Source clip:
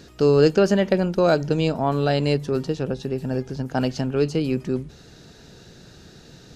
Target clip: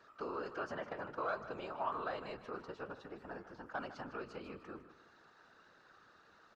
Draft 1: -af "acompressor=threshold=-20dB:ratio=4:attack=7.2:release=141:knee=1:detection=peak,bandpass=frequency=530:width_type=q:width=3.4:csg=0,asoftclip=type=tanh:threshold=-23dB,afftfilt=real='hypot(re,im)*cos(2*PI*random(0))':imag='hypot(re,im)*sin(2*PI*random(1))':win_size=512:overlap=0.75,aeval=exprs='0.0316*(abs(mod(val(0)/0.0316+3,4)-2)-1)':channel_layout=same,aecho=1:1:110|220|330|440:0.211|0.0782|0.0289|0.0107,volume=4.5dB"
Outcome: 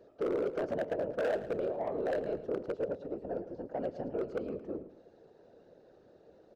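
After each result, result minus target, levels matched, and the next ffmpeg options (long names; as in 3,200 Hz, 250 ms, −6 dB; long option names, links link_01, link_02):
1,000 Hz band −9.5 dB; echo 44 ms early
-af "acompressor=threshold=-20dB:ratio=4:attack=7.2:release=141:knee=1:detection=peak,bandpass=frequency=1200:width_type=q:width=3.4:csg=0,asoftclip=type=tanh:threshold=-23dB,afftfilt=real='hypot(re,im)*cos(2*PI*random(0))':imag='hypot(re,im)*sin(2*PI*random(1))':win_size=512:overlap=0.75,aeval=exprs='0.0316*(abs(mod(val(0)/0.0316+3,4)-2)-1)':channel_layout=same,aecho=1:1:110|220|330|440:0.211|0.0782|0.0289|0.0107,volume=4.5dB"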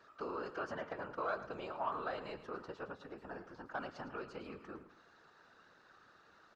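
echo 44 ms early
-af "acompressor=threshold=-20dB:ratio=4:attack=7.2:release=141:knee=1:detection=peak,bandpass=frequency=1200:width_type=q:width=3.4:csg=0,asoftclip=type=tanh:threshold=-23dB,afftfilt=real='hypot(re,im)*cos(2*PI*random(0))':imag='hypot(re,im)*sin(2*PI*random(1))':win_size=512:overlap=0.75,aeval=exprs='0.0316*(abs(mod(val(0)/0.0316+3,4)-2)-1)':channel_layout=same,aecho=1:1:154|308|462|616:0.211|0.0782|0.0289|0.0107,volume=4.5dB"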